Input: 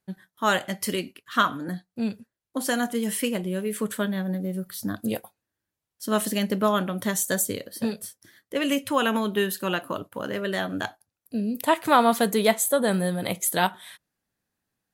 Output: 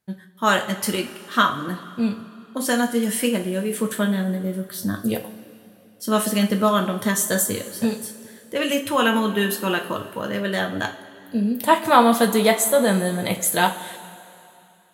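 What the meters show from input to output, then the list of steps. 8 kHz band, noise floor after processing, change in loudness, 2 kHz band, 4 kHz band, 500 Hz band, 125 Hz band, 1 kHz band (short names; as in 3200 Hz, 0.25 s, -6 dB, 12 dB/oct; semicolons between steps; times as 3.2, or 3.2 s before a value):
+4.0 dB, -51 dBFS, +4.5 dB, +4.5 dB, +4.0 dB, +4.0 dB, +4.5 dB, +4.5 dB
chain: two-slope reverb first 0.3 s, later 2.8 s, from -17 dB, DRR 3.5 dB; gain +2.5 dB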